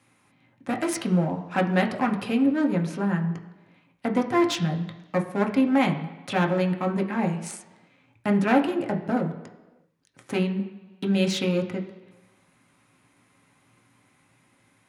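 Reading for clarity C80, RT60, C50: 13.0 dB, 1.2 s, 10.5 dB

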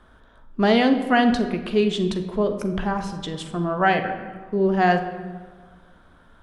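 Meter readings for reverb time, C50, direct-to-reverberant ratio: 1.6 s, 9.0 dB, 6.0 dB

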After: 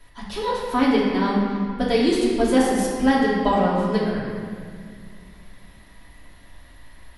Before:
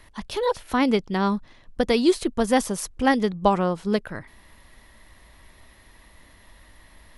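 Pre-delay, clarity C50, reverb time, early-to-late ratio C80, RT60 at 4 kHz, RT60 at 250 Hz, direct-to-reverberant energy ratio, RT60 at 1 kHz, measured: 3 ms, −0.5 dB, 2.1 s, 1.0 dB, 1.5 s, 3.1 s, −8.5 dB, 1.9 s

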